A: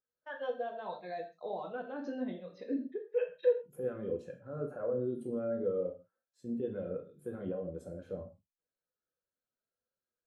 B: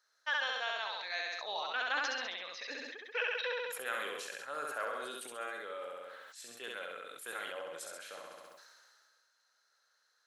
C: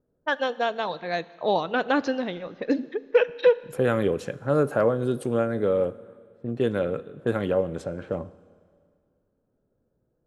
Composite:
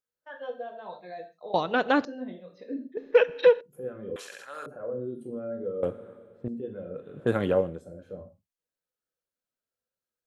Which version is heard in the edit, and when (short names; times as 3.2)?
A
1.54–2.05 from C
2.97–3.61 from C
4.16–4.66 from B
5.83–6.48 from C
7.06–7.7 from C, crossfade 0.24 s